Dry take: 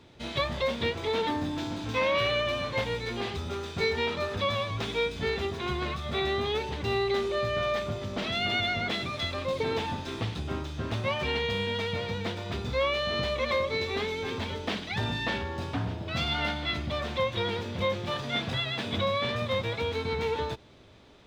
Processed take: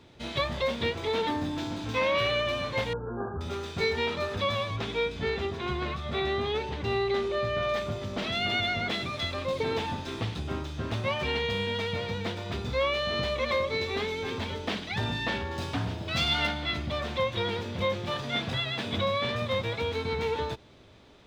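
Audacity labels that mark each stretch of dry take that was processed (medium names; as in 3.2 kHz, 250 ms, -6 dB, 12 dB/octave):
2.930000	3.410000	brick-wall FIR low-pass 1.7 kHz
4.760000	7.690000	treble shelf 7.1 kHz -10.5 dB
15.510000	16.470000	treble shelf 2.8 kHz +7.5 dB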